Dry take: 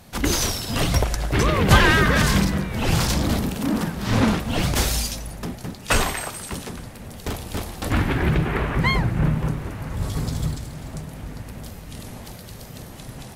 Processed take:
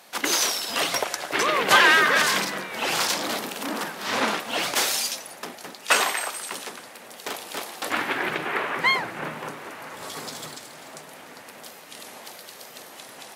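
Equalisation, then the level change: HPF 340 Hz 12 dB/oct; LPF 1500 Hz 6 dB/oct; tilt +4 dB/oct; +3.0 dB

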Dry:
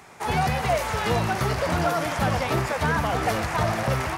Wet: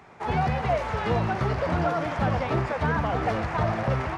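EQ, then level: tape spacing loss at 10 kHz 23 dB; 0.0 dB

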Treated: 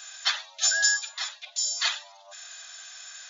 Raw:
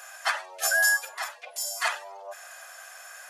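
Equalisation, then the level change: brick-wall FIR band-pass 540–7200 Hz; tilt +5 dB/oct; bell 3700 Hz +13.5 dB 0.43 oct; -8.0 dB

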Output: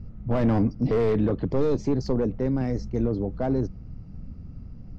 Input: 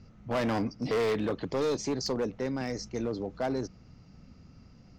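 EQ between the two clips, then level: tilt -4 dB/oct; 0.0 dB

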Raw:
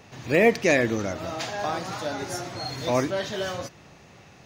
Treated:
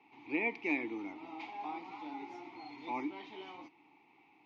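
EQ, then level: vowel filter u; three-band isolator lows -15 dB, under 410 Hz, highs -21 dB, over 4700 Hz; bell 940 Hz -3 dB 2.7 oct; +5.0 dB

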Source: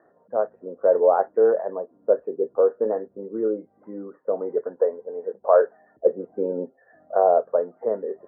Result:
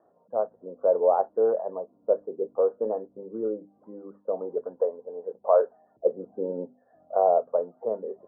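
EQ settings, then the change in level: LPF 1100 Hz 24 dB/oct; bell 370 Hz -4.5 dB 1.1 oct; notches 50/100/150/200/250/300 Hz; -1.5 dB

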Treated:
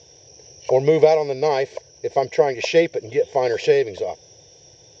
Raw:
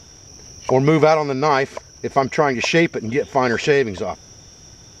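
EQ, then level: speaker cabinet 120–6100 Hz, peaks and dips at 150 Hz +3 dB, 500 Hz +7 dB, 1600 Hz +3 dB; fixed phaser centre 540 Hz, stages 4; -2.0 dB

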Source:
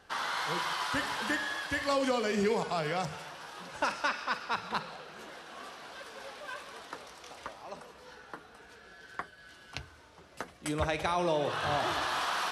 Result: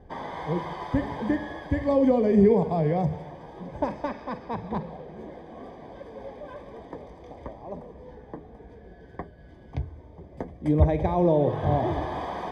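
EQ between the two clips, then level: running mean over 32 samples; low shelf 61 Hz +10 dB; low shelf 450 Hz +6 dB; +8.0 dB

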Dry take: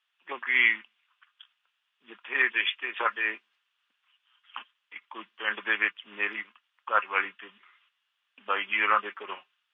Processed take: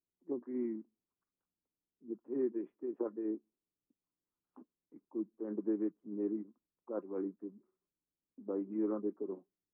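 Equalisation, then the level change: ladder low-pass 370 Hz, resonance 50%; low shelf 160 Hz +9.5 dB; +12.5 dB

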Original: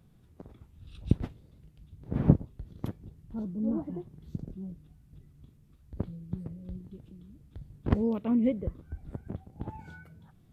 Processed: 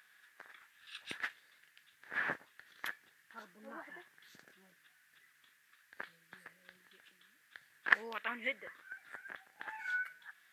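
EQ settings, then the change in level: resonant high-pass 1700 Hz, resonance Q 6.9; +7.0 dB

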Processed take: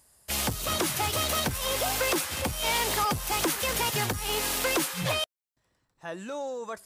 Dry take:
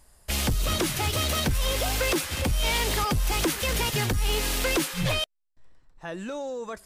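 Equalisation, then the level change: HPF 80 Hz 12 dB/oct; dynamic EQ 920 Hz, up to +7 dB, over -41 dBFS, Q 0.73; high shelf 5000 Hz +7.5 dB; -5.0 dB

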